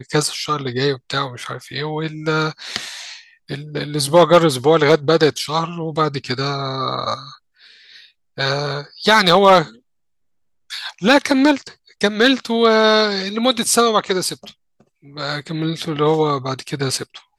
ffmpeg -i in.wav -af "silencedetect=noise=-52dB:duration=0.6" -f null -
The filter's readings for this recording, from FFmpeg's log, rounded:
silence_start: 9.80
silence_end: 10.70 | silence_duration: 0.91